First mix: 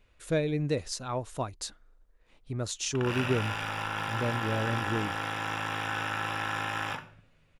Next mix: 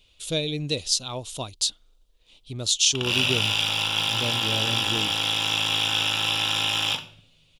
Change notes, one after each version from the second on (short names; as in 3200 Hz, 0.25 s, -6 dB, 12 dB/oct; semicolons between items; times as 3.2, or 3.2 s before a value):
background +3.0 dB; master: add resonant high shelf 2400 Hz +11 dB, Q 3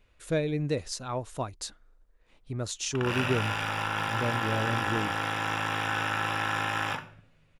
master: add resonant high shelf 2400 Hz -11 dB, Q 3